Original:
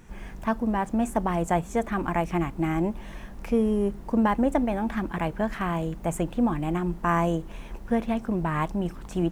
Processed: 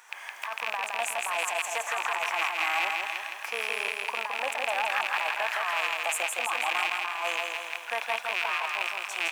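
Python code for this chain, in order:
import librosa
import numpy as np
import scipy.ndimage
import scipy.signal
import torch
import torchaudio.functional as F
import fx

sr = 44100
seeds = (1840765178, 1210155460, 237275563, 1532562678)

y = fx.rattle_buzz(x, sr, strikes_db=-33.0, level_db=-22.0)
y = scipy.signal.sosfilt(scipy.signal.butter(4, 830.0, 'highpass', fs=sr, output='sos'), y)
y = fx.over_compress(y, sr, threshold_db=-34.0, ratio=-1.0)
y = fx.echo_feedback(y, sr, ms=164, feedback_pct=54, wet_db=-3.5)
y = y * librosa.db_to_amplitude(4.0)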